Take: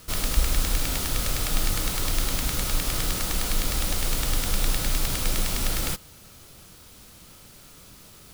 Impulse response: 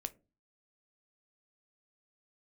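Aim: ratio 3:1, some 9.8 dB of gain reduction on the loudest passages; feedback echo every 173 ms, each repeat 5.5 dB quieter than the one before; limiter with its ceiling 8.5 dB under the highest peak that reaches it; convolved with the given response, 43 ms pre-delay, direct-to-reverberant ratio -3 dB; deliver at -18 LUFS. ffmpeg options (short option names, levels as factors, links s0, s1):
-filter_complex "[0:a]acompressor=threshold=0.0398:ratio=3,alimiter=limit=0.0841:level=0:latency=1,aecho=1:1:173|346|519|692|865|1038|1211:0.531|0.281|0.149|0.079|0.0419|0.0222|0.0118,asplit=2[s0][s1];[1:a]atrim=start_sample=2205,adelay=43[s2];[s1][s2]afir=irnorm=-1:irlink=0,volume=1.78[s3];[s0][s3]amix=inputs=2:normalize=0,volume=2.99"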